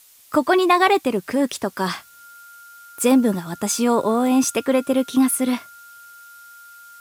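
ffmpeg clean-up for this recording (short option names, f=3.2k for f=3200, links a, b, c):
-af "adeclick=t=4,bandreject=f=1.4k:w=30,agate=range=-21dB:threshold=-38dB"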